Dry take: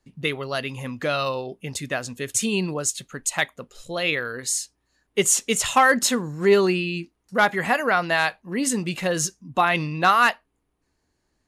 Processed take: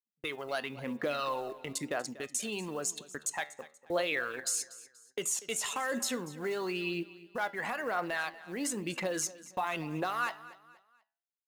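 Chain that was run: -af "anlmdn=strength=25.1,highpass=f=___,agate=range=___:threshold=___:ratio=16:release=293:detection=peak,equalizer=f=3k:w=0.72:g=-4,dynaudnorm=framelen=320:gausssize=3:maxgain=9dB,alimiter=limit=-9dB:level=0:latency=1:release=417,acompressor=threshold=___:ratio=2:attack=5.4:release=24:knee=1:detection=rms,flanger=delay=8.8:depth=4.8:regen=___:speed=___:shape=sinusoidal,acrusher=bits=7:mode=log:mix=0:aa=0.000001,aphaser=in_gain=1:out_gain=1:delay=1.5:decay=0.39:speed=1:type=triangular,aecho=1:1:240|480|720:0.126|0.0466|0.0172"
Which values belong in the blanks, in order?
350, -28dB, -44dB, -34dB, 82, 0.44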